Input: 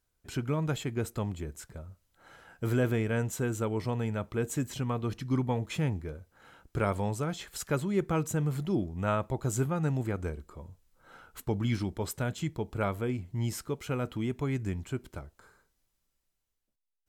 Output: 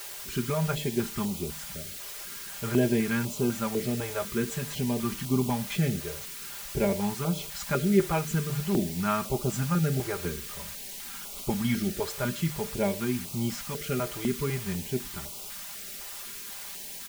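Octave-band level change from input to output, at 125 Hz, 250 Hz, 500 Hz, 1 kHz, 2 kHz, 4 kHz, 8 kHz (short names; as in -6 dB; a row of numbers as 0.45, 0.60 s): +0.5, +4.0, +3.0, +2.0, +4.0, +8.0, +7.0 dB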